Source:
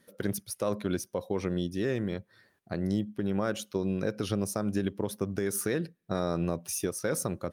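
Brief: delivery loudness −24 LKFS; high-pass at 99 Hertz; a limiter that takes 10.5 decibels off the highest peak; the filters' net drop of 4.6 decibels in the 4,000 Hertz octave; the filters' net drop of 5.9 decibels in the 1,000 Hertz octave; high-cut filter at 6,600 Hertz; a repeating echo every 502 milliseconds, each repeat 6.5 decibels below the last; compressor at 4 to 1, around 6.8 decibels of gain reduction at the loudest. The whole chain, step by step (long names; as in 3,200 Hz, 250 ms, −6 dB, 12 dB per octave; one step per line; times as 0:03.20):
high-pass filter 99 Hz
low-pass filter 6,600 Hz
parametric band 1,000 Hz −8 dB
parametric band 4,000 Hz −5 dB
downward compressor 4 to 1, threshold −34 dBFS
brickwall limiter −31.5 dBFS
repeating echo 502 ms, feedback 47%, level −6.5 dB
level +18 dB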